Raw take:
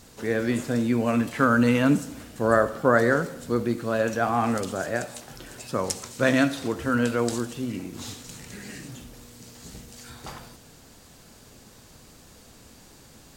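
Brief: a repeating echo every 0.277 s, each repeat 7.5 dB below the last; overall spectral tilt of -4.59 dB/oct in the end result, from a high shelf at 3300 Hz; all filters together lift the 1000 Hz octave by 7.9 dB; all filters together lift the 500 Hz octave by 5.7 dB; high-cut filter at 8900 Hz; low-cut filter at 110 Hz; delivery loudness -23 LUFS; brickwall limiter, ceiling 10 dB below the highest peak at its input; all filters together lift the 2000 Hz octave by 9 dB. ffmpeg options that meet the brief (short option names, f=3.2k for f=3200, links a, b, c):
-af "highpass=110,lowpass=8.9k,equalizer=f=500:t=o:g=4.5,equalizer=f=1k:t=o:g=6,equalizer=f=2k:t=o:g=8,highshelf=f=3.3k:g=5,alimiter=limit=-9dB:level=0:latency=1,aecho=1:1:277|554|831|1108|1385:0.422|0.177|0.0744|0.0312|0.0131,volume=-1.5dB"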